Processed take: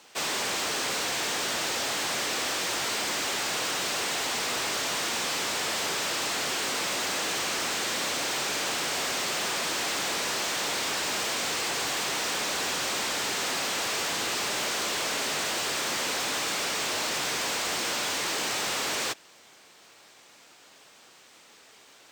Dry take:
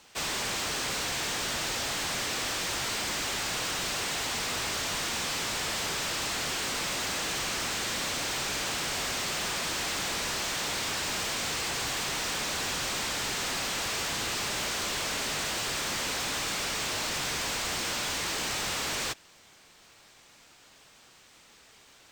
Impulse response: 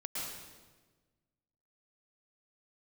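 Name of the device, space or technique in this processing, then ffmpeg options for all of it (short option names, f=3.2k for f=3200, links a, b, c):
filter by subtraction: -filter_complex "[0:a]asplit=2[a][b];[b]lowpass=400,volume=-1[c];[a][c]amix=inputs=2:normalize=0,volume=2dB"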